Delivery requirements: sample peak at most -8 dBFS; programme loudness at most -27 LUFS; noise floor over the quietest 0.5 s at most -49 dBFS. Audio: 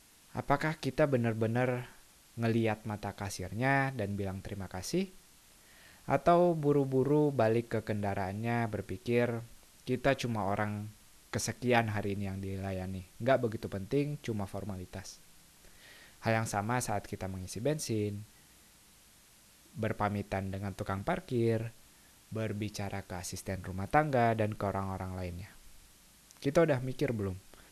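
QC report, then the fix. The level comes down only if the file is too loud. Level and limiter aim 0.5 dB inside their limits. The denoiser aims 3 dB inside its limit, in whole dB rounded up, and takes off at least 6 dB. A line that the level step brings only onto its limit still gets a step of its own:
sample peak -11.5 dBFS: OK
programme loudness -33.0 LUFS: OK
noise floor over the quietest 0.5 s -61 dBFS: OK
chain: none

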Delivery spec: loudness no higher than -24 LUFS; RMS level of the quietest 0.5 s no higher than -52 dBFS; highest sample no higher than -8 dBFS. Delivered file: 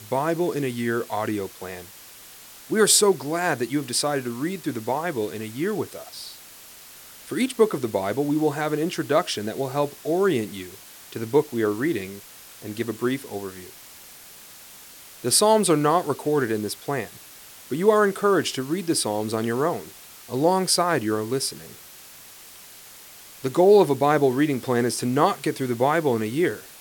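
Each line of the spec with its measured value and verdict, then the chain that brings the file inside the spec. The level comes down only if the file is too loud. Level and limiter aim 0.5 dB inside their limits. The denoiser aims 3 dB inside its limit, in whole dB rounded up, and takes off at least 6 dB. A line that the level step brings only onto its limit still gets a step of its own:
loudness -23.0 LUFS: fail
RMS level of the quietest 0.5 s -45 dBFS: fail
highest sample -5.5 dBFS: fail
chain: denoiser 9 dB, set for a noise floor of -45 dBFS; gain -1.5 dB; limiter -8.5 dBFS

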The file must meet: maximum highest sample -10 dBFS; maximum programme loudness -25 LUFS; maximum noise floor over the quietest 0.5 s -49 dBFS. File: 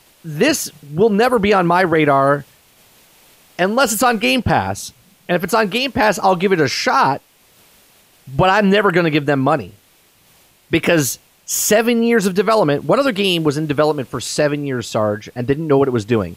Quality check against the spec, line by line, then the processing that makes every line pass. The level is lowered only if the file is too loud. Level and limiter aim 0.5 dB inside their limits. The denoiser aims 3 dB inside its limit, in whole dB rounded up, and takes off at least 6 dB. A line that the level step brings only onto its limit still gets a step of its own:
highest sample -4.0 dBFS: fail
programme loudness -16.0 LUFS: fail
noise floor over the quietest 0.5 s -53 dBFS: OK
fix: gain -9.5 dB

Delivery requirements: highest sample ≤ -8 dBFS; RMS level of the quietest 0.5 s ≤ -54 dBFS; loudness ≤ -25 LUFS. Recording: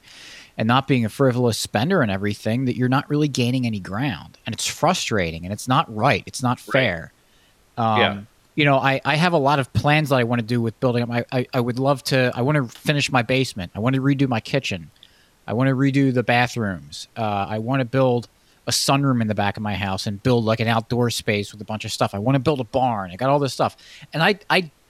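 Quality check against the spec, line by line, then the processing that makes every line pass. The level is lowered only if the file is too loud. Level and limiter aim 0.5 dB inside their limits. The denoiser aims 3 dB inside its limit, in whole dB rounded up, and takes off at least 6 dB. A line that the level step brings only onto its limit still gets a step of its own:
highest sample -3.5 dBFS: fail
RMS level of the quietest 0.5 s -57 dBFS: OK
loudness -21.0 LUFS: fail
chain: gain -4.5 dB; limiter -8.5 dBFS

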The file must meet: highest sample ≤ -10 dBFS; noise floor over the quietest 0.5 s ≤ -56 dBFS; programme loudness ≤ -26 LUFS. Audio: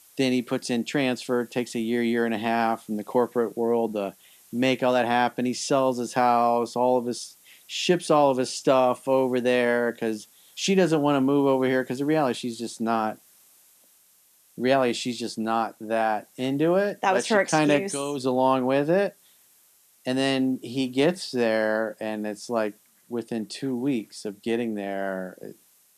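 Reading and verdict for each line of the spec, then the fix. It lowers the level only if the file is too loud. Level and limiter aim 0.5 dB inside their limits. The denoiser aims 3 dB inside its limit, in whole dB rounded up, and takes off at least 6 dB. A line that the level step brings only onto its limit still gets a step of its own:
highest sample -7.5 dBFS: fail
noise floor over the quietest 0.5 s -60 dBFS: OK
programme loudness -25.0 LUFS: fail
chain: gain -1.5 dB; limiter -10.5 dBFS

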